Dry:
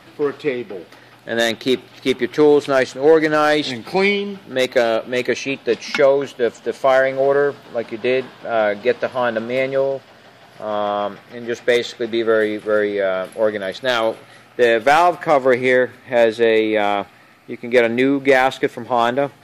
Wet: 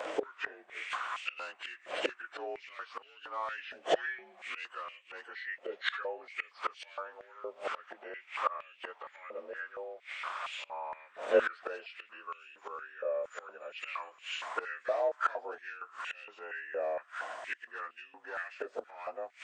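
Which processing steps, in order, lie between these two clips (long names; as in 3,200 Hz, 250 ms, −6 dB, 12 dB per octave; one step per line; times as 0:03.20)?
partials spread apart or drawn together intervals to 88%
in parallel at −1 dB: downward compressor 16 to 1, threshold −23 dBFS, peak gain reduction 16 dB
on the sum: gate with flip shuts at −17 dBFS, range −26 dB
high-pass on a step sequencer 4.3 Hz 560–2,700 Hz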